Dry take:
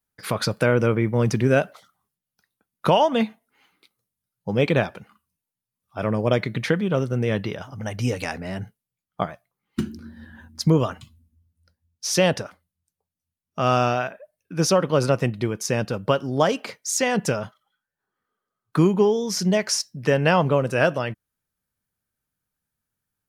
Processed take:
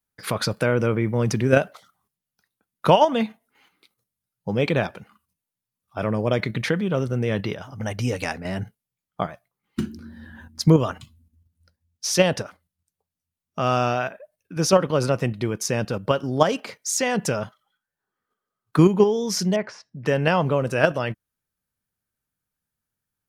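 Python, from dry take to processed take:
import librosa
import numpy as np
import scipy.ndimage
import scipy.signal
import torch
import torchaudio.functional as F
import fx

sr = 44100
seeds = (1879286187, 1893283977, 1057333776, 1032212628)

p1 = fx.level_steps(x, sr, step_db=16)
p2 = x + F.gain(torch.from_numpy(p1), 3.0).numpy()
p3 = fx.lowpass(p2, sr, hz=1700.0, slope=12, at=(19.56, 20.06))
y = F.gain(torch.from_numpy(p3), -4.0).numpy()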